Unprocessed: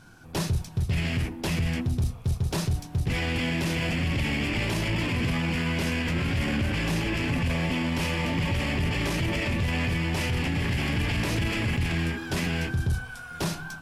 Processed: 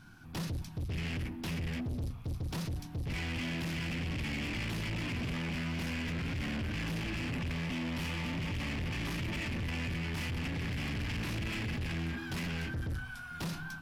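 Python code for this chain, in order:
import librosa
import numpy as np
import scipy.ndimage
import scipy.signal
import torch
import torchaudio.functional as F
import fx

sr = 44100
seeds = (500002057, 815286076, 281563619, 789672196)

y = fx.graphic_eq(x, sr, hz=(250, 500, 8000), db=(3, -12, -7))
y = 10.0 ** (-30.5 / 20.0) * np.tanh(y / 10.0 ** (-30.5 / 20.0))
y = F.gain(torch.from_numpy(y), -2.5).numpy()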